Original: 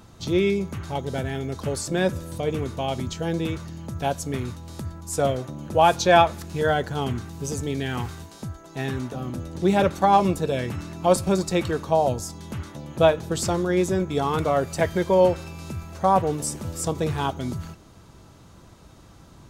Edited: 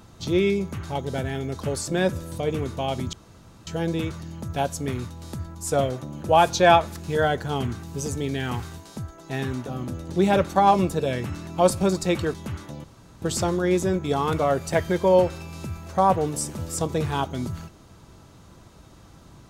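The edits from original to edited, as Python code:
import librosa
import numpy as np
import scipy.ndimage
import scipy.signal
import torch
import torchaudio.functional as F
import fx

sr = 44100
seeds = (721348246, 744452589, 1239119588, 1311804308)

y = fx.edit(x, sr, fx.insert_room_tone(at_s=3.13, length_s=0.54),
    fx.cut(start_s=11.8, length_s=0.6),
    fx.room_tone_fill(start_s=12.9, length_s=0.38), tone=tone)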